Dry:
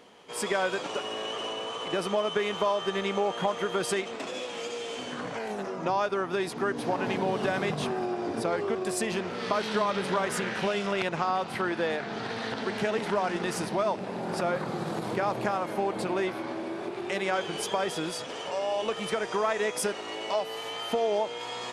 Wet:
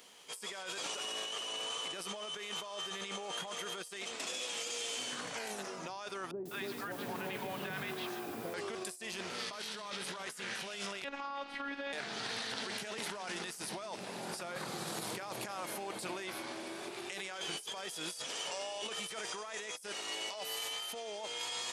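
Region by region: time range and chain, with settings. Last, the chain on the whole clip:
0:06.31–0:08.54: high-frequency loss of the air 230 metres + three-band delay without the direct sound lows, mids, highs 200/300 ms, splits 670/5,200 Hz + feedback echo at a low word length 142 ms, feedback 35%, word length 8 bits, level −11 dB
0:11.04–0:11.93: low-pass filter 2,700 Hz + phases set to zero 280 Hz
whole clip: first-order pre-emphasis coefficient 0.9; compressor whose output falls as the input rises −47 dBFS, ratio −1; level +5.5 dB

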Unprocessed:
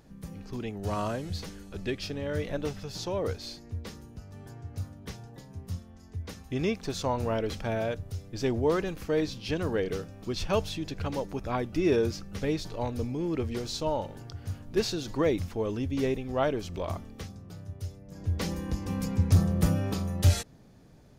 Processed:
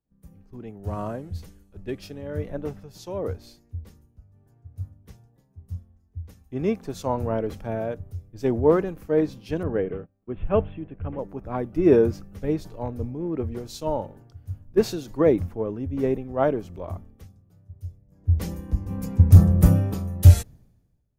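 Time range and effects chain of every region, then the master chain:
0:09.63–0:11.19: noise gate −41 dBFS, range −19 dB + Butterworth low-pass 3,200 Hz 72 dB per octave + notch filter 910 Hz
whole clip: parametric band 4,400 Hz −14.5 dB 2.4 octaves; multiband upward and downward expander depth 100%; level +3 dB

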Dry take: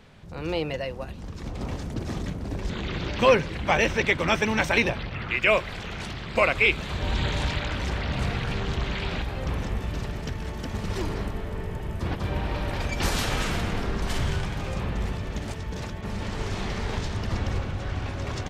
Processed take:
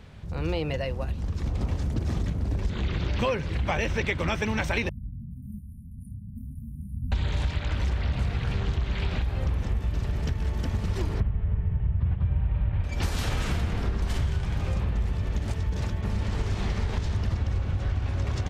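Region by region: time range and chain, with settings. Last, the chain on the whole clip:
0:04.89–0:07.12: linear-phase brick-wall band-stop 270–9,200 Hz + low-shelf EQ 150 Hz −9.5 dB + micro pitch shift up and down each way 13 cents
0:11.20–0:12.84: inverse Chebyshev low-pass filter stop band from 7,400 Hz, stop band 50 dB + low shelf with overshoot 200 Hz +9 dB, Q 1.5
whole clip: parametric band 67 Hz +11.5 dB 1.9 octaves; downward compressor, threshold −23 dBFS

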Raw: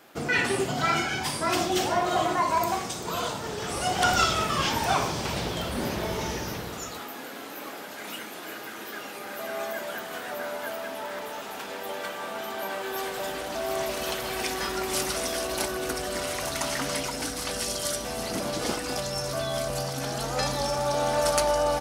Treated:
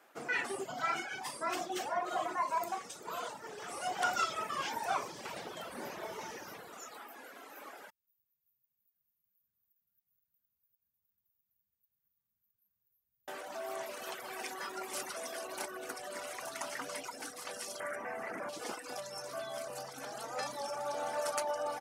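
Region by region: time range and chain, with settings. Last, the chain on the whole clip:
0:07.90–0:13.28: inverse Chebyshev band-stop filter 290–8,400 Hz, stop band 60 dB + downward compressor, threshold −59 dBFS
0:17.80–0:18.49: high shelf with overshoot 2,700 Hz −11.5 dB, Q 3 + envelope flattener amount 70%
whole clip: meter weighting curve A; reverb reduction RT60 0.85 s; parametric band 3,900 Hz −8.5 dB 1.5 octaves; level −6.5 dB

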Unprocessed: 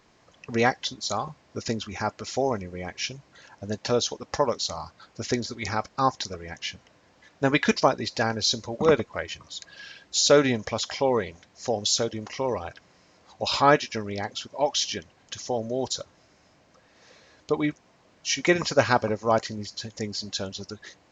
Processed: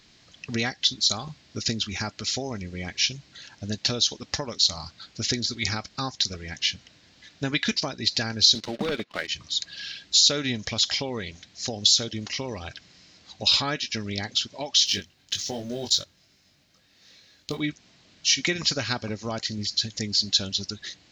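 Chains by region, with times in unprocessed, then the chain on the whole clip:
0:08.55–0:09.28: band-pass filter 230–3,500 Hz + leveller curve on the samples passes 2
0:14.86–0:17.60: mu-law and A-law mismatch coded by A + double-tracking delay 21 ms −3.5 dB
whole clip: downward compressor 2.5 to 1, threshold −27 dBFS; graphic EQ with 10 bands 500 Hz −8 dB, 1,000 Hz −9 dB, 4,000 Hz +9 dB; level +4 dB

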